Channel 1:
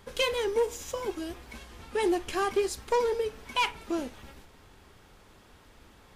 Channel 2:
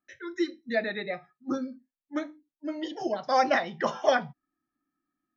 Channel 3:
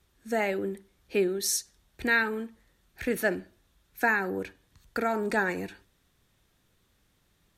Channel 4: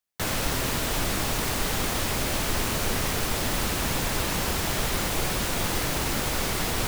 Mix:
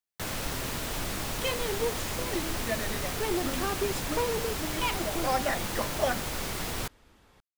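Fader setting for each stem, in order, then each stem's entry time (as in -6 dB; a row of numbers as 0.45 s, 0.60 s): -4.5 dB, -5.5 dB, mute, -6.5 dB; 1.25 s, 1.95 s, mute, 0.00 s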